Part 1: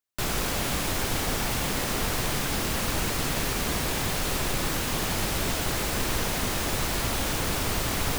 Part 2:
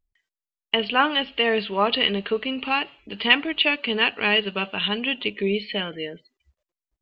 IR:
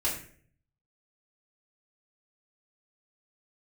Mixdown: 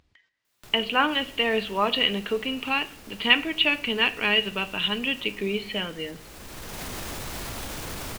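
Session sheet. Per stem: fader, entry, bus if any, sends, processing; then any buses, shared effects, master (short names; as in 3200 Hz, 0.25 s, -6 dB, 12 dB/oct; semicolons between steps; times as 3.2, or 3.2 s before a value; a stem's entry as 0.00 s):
-1.0 dB, 0.45 s, no send, echo send -17.5 dB, limiter -24.5 dBFS, peak gain reduction 9.5 dB; auto duck -14 dB, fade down 0.65 s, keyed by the second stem
-2.5 dB, 0.00 s, send -17.5 dB, no echo send, Chebyshev band-pass 100–4000 Hz, order 2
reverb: on, RT60 0.50 s, pre-delay 3 ms
echo: echo 0.475 s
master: upward compressor, threshold -47 dBFS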